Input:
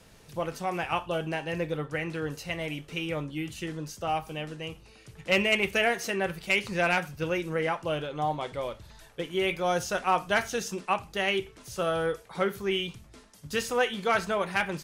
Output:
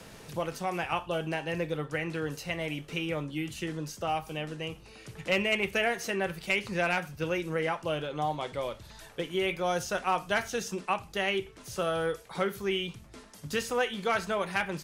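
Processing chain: three-band squash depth 40%; gain -2 dB

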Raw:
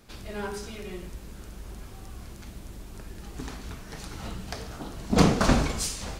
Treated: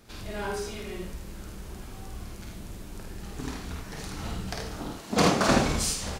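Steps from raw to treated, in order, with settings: 4.92–5.63 HPF 610 Hz -> 170 Hz 6 dB/oct; early reflections 51 ms -3.5 dB, 78 ms -5.5 dB

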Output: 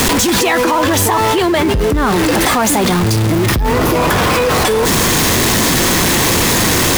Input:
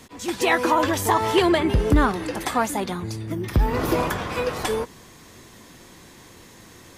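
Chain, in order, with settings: zero-crossing step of -22 dBFS; fast leveller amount 100%; gain -1 dB

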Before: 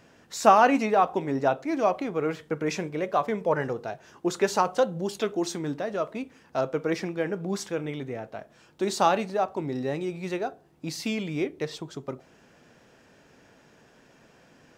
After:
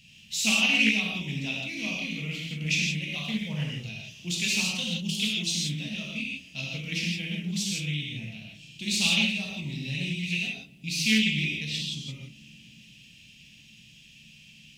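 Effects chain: EQ curve 200 Hz 0 dB, 370 Hz -27 dB, 1500 Hz -27 dB, 2700 Hz +13 dB, 4900 Hz +3 dB; darkening echo 0.115 s, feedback 85%, low-pass 2000 Hz, level -23 dB; non-linear reverb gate 0.19 s flat, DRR -4 dB; Doppler distortion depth 0.16 ms

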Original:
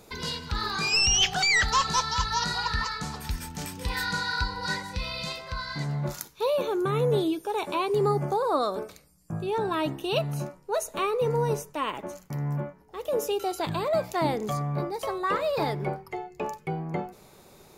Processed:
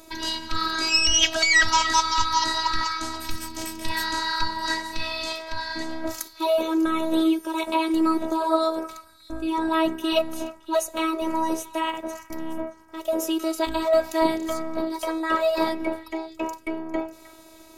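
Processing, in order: delay with a stepping band-pass 0.31 s, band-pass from 1600 Hz, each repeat 1.4 oct, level -12 dB; robotiser 323 Hz; gain +6.5 dB

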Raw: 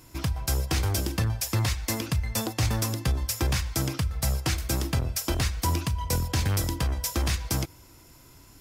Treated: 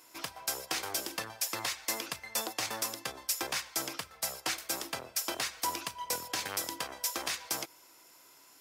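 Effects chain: HPF 530 Hz 12 dB/oct; 2.83–5.15 three-band expander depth 40%; gain -2.5 dB

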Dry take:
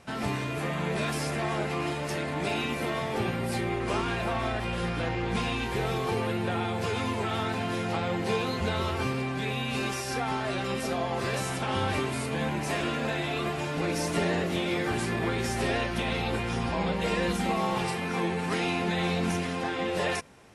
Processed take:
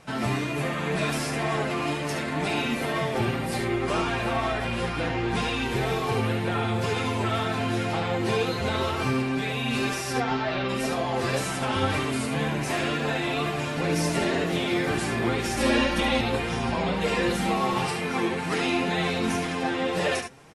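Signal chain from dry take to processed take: 10.12–10.68 LPF 6900 Hz -> 4300 Hz 24 dB/oct; echo 72 ms -7 dB; flange 2 Hz, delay 6 ms, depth 2.5 ms, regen +38%; 15.57–16.21 comb 3.6 ms, depth 100%; gain +6.5 dB

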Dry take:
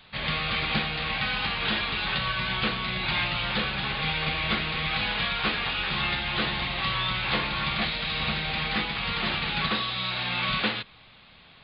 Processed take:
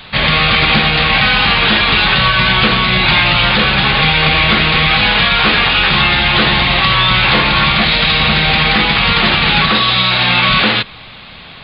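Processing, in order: maximiser +19.5 dB; gain -1 dB

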